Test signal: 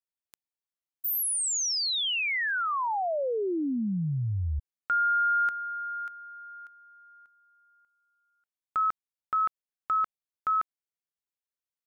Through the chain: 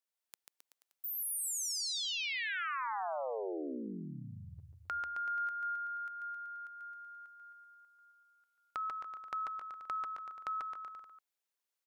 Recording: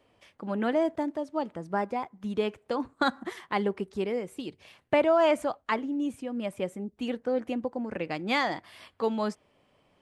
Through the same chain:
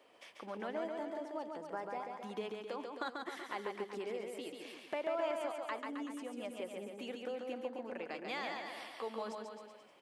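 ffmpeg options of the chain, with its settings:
-af "highpass=370,acompressor=threshold=-52dB:ratio=2:attack=4.9:release=327:detection=peak,aecho=1:1:140|266|379.4|481.5|573.3:0.631|0.398|0.251|0.158|0.1,volume=2.5dB"

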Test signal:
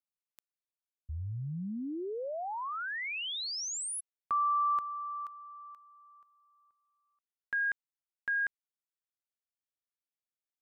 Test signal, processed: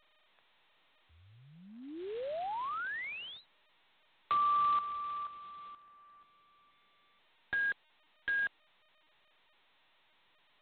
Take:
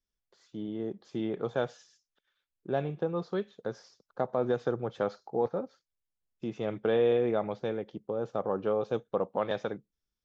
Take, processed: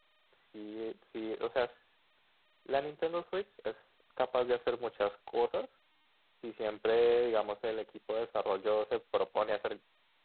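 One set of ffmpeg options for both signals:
-filter_complex "[0:a]highpass=f=80:w=0.5412,highpass=f=80:w=1.3066,acrossover=split=350 2300:gain=0.0708 1 0.178[a][b][c];[a][b][c]amix=inputs=3:normalize=0" -ar 8000 -c:a adpcm_g726 -b:a 16k

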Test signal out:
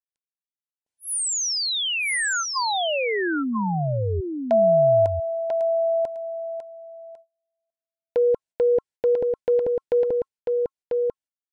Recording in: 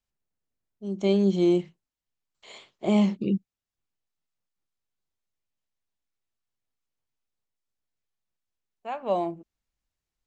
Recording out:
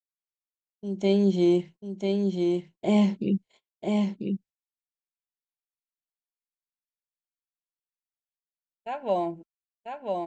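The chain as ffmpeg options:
-filter_complex "[0:a]agate=range=-37dB:threshold=-43dB:ratio=16:detection=peak,asplit=2[a][b];[b]aecho=0:1:993:0.631[c];[a][c]amix=inputs=2:normalize=0,aresample=22050,aresample=44100,asuperstop=centerf=1200:order=20:qfactor=4.8"

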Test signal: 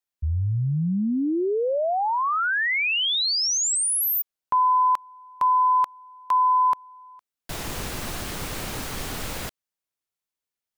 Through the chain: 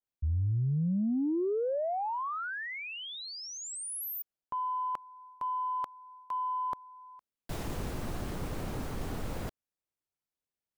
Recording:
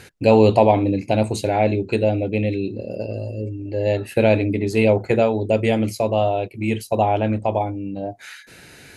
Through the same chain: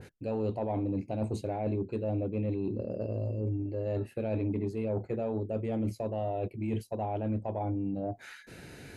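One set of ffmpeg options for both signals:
-af "areverse,acompressor=threshold=-27dB:ratio=6:attack=5.8:release=344:knee=6:detection=peak,areverse,tiltshelf=f=900:g=5,asoftclip=type=tanh:threshold=-16.5dB,adynamicequalizer=threshold=0.00562:dfrequency=1800:dqfactor=0.7:tfrequency=1800:tqfactor=0.7:attack=5:release=100:ratio=0.375:range=2.5:mode=cutabove:tftype=highshelf,volume=-4dB"

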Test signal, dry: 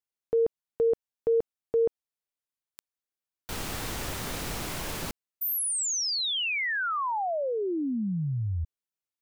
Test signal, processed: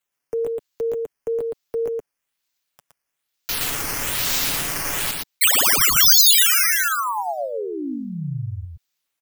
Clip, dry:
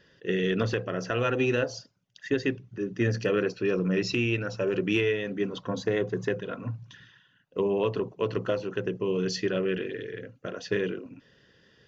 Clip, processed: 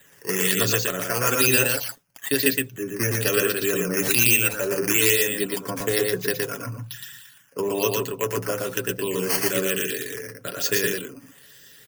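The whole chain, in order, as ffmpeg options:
-filter_complex "[0:a]acrossover=split=190|540|1900[a][b][c][d];[d]acrusher=samples=8:mix=1:aa=0.000001:lfo=1:lforange=8:lforate=1.1[e];[a][b][c][e]amix=inputs=4:normalize=0,aecho=1:1:7.1:0.36,aecho=1:1:117:0.708,crystalizer=i=8.5:c=0,alimiter=level_in=-0.5dB:limit=-1dB:release=50:level=0:latency=1,volume=-1dB"

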